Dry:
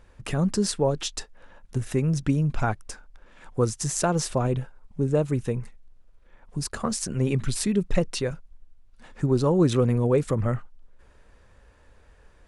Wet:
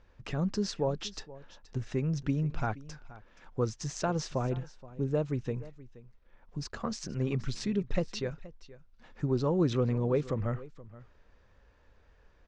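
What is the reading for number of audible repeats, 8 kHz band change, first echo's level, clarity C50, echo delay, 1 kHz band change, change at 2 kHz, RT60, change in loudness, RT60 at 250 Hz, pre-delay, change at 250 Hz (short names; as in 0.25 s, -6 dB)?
1, -13.0 dB, -18.5 dB, none, 0.475 s, -7.0 dB, -7.0 dB, none, -7.0 dB, none, none, -7.0 dB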